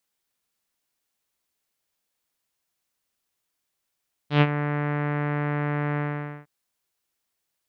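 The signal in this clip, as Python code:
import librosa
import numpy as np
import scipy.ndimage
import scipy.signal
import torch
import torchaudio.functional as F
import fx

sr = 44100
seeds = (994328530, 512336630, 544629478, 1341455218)

y = fx.sub_voice(sr, note=50, wave='saw', cutoff_hz=2000.0, q=1.8, env_oct=1.0, env_s=0.22, attack_ms=111.0, decay_s=0.05, sustain_db=-11.0, release_s=0.48, note_s=1.68, slope=24)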